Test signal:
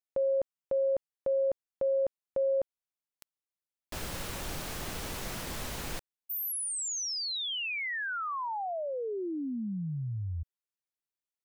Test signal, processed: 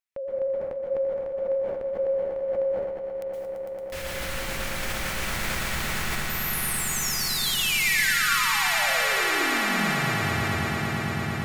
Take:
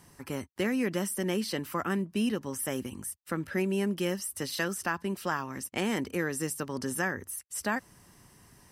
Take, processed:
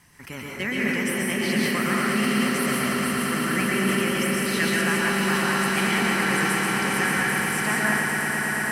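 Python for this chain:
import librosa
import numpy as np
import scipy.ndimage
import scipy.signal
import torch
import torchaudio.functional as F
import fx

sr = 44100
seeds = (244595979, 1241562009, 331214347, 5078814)

y = fx.peak_eq(x, sr, hz=430.0, db=-6.0, octaves=1.6)
y = fx.vibrato(y, sr, rate_hz=12.0, depth_cents=46.0)
y = fx.peak_eq(y, sr, hz=2100.0, db=8.0, octaves=0.97)
y = fx.echo_swell(y, sr, ms=113, loudest=8, wet_db=-9)
y = fx.rev_plate(y, sr, seeds[0], rt60_s=1.5, hf_ratio=0.45, predelay_ms=110, drr_db=-3.5)
y = fx.sustainer(y, sr, db_per_s=31.0)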